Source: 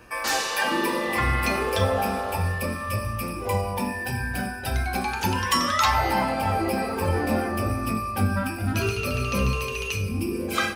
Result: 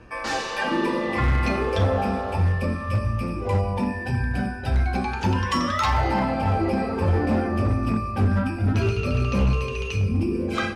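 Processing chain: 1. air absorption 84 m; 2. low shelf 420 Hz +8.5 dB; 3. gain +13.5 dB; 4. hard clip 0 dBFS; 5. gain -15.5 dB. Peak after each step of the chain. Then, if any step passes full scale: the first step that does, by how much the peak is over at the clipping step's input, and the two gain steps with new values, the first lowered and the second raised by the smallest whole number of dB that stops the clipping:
-9.0, -4.5, +9.0, 0.0, -15.5 dBFS; step 3, 9.0 dB; step 3 +4.5 dB, step 5 -6.5 dB

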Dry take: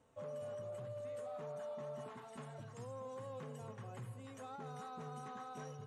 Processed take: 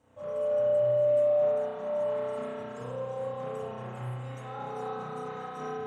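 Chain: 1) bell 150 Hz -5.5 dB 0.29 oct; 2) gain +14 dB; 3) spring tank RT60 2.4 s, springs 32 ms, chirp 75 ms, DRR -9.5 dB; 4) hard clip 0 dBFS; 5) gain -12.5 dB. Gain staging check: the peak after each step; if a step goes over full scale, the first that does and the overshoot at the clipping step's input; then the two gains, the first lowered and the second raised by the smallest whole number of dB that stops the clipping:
-38.0, -24.0, -6.0, -6.0, -18.5 dBFS; no overload

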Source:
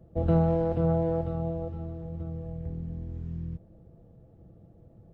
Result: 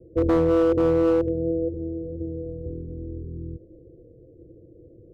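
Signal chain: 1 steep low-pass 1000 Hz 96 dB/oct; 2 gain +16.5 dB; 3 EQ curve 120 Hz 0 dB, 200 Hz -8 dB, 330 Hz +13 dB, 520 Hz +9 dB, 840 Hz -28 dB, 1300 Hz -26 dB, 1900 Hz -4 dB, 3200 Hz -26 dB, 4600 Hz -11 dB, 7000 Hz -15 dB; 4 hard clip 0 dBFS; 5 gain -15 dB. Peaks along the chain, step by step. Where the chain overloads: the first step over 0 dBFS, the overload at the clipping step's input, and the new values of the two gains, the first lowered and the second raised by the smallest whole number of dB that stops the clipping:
-13.0, +3.5, +9.5, 0.0, -15.0 dBFS; step 2, 9.5 dB; step 2 +6.5 dB, step 5 -5 dB

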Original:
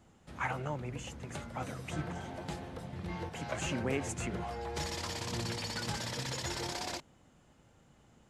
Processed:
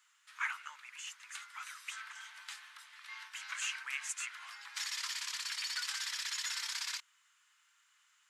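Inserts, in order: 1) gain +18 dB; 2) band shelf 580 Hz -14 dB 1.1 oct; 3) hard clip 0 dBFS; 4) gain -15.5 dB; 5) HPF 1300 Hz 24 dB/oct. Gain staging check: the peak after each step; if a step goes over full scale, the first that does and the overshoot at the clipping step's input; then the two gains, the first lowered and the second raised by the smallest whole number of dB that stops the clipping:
-3.5, -5.0, -5.0, -20.5, -22.5 dBFS; no overload

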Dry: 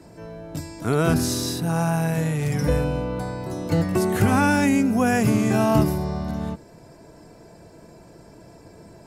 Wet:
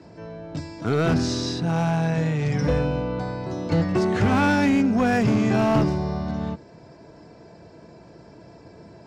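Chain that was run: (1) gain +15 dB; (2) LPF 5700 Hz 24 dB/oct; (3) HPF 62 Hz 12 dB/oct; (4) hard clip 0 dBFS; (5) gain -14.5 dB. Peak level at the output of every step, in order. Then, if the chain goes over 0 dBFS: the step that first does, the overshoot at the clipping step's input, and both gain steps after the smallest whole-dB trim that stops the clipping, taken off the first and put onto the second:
+8.5, +8.0, +8.5, 0.0, -14.5 dBFS; step 1, 8.5 dB; step 1 +6 dB, step 5 -5.5 dB

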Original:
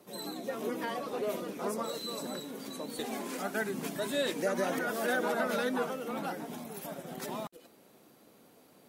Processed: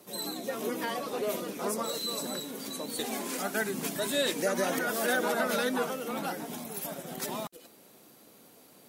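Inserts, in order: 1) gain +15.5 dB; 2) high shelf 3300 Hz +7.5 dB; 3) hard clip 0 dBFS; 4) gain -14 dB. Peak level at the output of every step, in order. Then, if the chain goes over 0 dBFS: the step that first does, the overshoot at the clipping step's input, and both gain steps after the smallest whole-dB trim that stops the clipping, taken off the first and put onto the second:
-4.0, -2.0, -2.0, -16.0 dBFS; no overload

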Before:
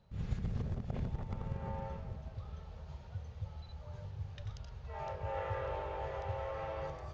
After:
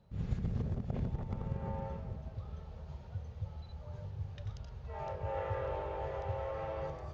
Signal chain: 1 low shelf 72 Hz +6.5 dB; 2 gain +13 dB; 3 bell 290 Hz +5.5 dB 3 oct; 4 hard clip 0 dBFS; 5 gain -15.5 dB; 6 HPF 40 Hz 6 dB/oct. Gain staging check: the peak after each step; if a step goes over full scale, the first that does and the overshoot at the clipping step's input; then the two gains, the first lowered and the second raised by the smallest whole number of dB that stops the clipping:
-19.0, -6.0, -4.0, -4.0, -19.5, -22.0 dBFS; no overload

